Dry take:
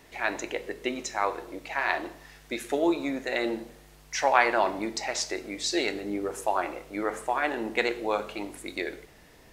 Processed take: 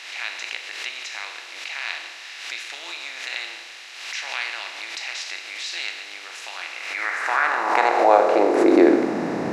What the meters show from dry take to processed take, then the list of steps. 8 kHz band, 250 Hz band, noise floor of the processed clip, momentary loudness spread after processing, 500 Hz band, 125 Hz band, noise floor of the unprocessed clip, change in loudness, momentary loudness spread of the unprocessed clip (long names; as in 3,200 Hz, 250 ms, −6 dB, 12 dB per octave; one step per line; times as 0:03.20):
−0.5 dB, +8.0 dB, −39 dBFS, 17 LU, +7.0 dB, can't be measured, −54 dBFS, +6.5 dB, 12 LU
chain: compressor on every frequency bin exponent 0.4
spectral tilt −4 dB per octave
high-pass filter sweep 3,000 Hz → 150 Hz, 0:06.71–0:09.49
background raised ahead of every attack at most 50 dB per second